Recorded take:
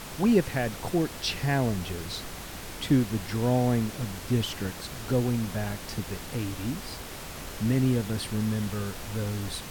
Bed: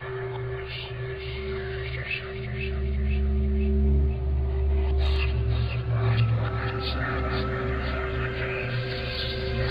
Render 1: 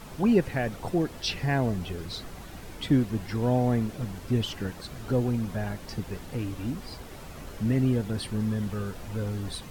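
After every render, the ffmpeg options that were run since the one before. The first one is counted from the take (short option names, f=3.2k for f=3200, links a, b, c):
-af "afftdn=nr=9:nf=-40"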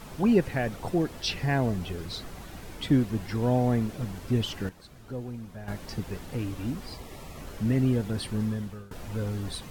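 -filter_complex "[0:a]asettb=1/sr,asplit=3[a][b][c];[a]atrim=end=6.924[d];[b]atrim=start=6.92:end=7.41,asetpts=PTS-STARTPTS,afade=t=in:d=0.004:c=qsin,afade=t=out:st=0.486:d=0.004:c=qsin,asuperstop=centerf=1500:order=8:qfactor=5.4[e];[c]atrim=start=7.406[f];[d][e]acrossfade=d=0.004:c1=hsin:c2=qsin[g];[g][f]acrossfade=d=0.004:c1=qsin:c2=hsin,asplit=4[h][i][j][k];[h]atrim=end=4.692[l];[i]atrim=start=4.688:end=5.682,asetpts=PTS-STARTPTS,volume=-10.5dB[m];[j]atrim=start=5.678:end=8.91,asetpts=PTS-STARTPTS,afade=t=out:st=2.742:d=0.49:silence=0.0841395[n];[k]atrim=start=8.91,asetpts=PTS-STARTPTS,afade=t=in:d=0.004:c=hsin:silence=0.0841395[o];[l][m]acrossfade=d=0.004:c1=hsin:c2=hsin[p];[n][o]concat=n=2:v=0:a=1[q];[p][q]acrossfade=d=0.004:c1=hsin:c2=hsin"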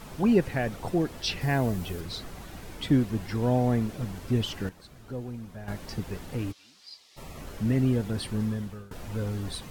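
-filter_complex "[0:a]asettb=1/sr,asplit=3[a][b][c];[a]atrim=end=1.414[d];[b]atrim=start=1.41:end=2.01,asetpts=PTS-STARTPTS,afade=t=in:d=0.004:c=qsin,afade=t=out:st=0.596:d=0.004:c=qsin,highshelf=f=10k:g=11.5[e];[c]atrim=start=2.006[f];[d][e]acrossfade=d=0.004:c1=hsin:c2=qsin[g];[g][f]acrossfade=d=0.004:c1=qsin:c2=hsin,asplit=3[h][i][j];[h]afade=t=out:st=6.51:d=0.02[k];[i]bandpass=f=4.6k:t=q:w=2.1,afade=t=in:st=6.51:d=0.02,afade=t=out:st=7.16:d=0.02[l];[j]afade=t=in:st=7.16:d=0.02[m];[k][l][m]amix=inputs=3:normalize=0"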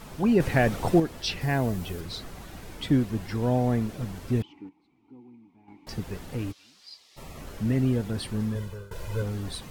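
-filter_complex "[0:a]asettb=1/sr,asplit=3[a][b][c];[a]atrim=end=0.404[d];[b]atrim=start=0.4:end=1,asetpts=PTS-STARTPTS,afade=t=in:d=0.004:c=qsin,afade=t=out:st=0.596:d=0.004:c=qsin,acontrast=80[e];[c]atrim=start=0.996[f];[d][e]acrossfade=d=0.004:c1=hsin:c2=qsin[g];[g][f]acrossfade=d=0.004:c1=qsin:c2=hsin,asettb=1/sr,asplit=3[h][i][j];[h]atrim=end=4.424[k];[i]atrim=start=4.42:end=5.87,asetpts=PTS-STARTPTS,afade=t=in:d=0.004:c=qsin,afade=t=out:st=1.446:d=0.004:c=qsin,asplit=3[l][m][n];[l]bandpass=f=300:t=q:w=8,volume=0dB[o];[m]bandpass=f=870:t=q:w=8,volume=-6dB[p];[n]bandpass=f=2.24k:t=q:w=8,volume=-9dB[q];[o][p][q]amix=inputs=3:normalize=0[r];[j]atrim=start=5.866[s];[k][r]acrossfade=d=0.004:c1=hsin:c2=qsin[t];[t][s]acrossfade=d=0.004:c1=qsin:c2=hsin,asettb=1/sr,asplit=3[u][v][w];[u]atrim=end=8.554[x];[v]atrim=start=8.55:end=9.22,asetpts=PTS-STARTPTS,afade=t=in:d=0.004:c=qsin,afade=t=out:st=0.666:d=0.004:c=qsin,aecho=1:1:2:0.87,atrim=end_sample=29547[y];[w]atrim=start=9.216[z];[x][y]acrossfade=d=0.004:c1=hsin:c2=qsin[aa];[aa][z]acrossfade=d=0.004:c1=qsin:c2=hsin"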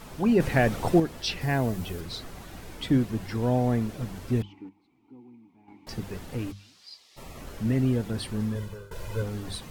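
-af "bandreject=f=50:t=h:w=6,bandreject=f=100:t=h:w=6,bandreject=f=150:t=h:w=6,bandreject=f=200:t=h:w=6"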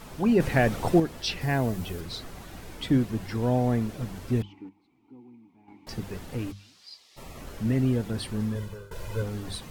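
-af anull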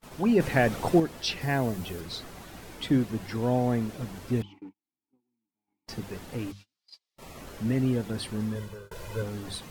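-af "agate=range=-31dB:threshold=-44dB:ratio=16:detection=peak,lowshelf=f=97:g=-7.5"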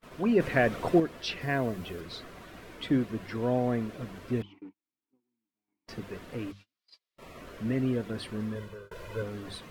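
-af "bass=f=250:g=-5,treble=f=4k:g=-10,bandreject=f=830:w=5.2"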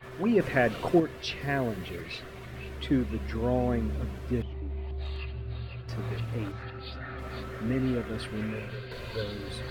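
-filter_complex "[1:a]volume=-11.5dB[a];[0:a][a]amix=inputs=2:normalize=0"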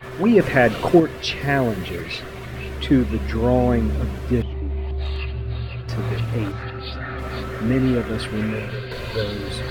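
-af "volume=9.5dB,alimiter=limit=-3dB:level=0:latency=1"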